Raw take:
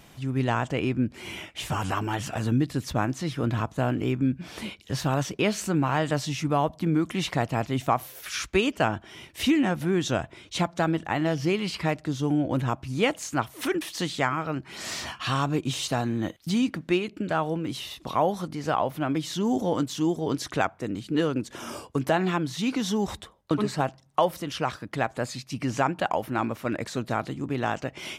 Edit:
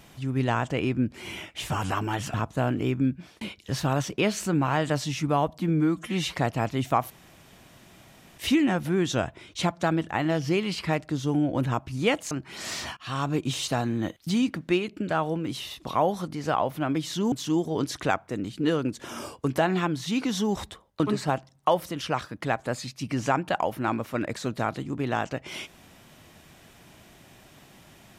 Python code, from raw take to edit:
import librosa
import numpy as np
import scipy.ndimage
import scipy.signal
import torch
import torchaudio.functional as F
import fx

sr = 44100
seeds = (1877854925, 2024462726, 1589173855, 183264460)

y = fx.edit(x, sr, fx.cut(start_s=2.34, length_s=1.21),
    fx.fade_out_span(start_s=4.28, length_s=0.34),
    fx.stretch_span(start_s=6.81, length_s=0.5, factor=1.5),
    fx.room_tone_fill(start_s=8.06, length_s=1.28),
    fx.cut(start_s=13.27, length_s=1.24),
    fx.fade_in_from(start_s=15.17, length_s=0.47, curve='qsin', floor_db=-23.0),
    fx.cut(start_s=19.52, length_s=0.31), tone=tone)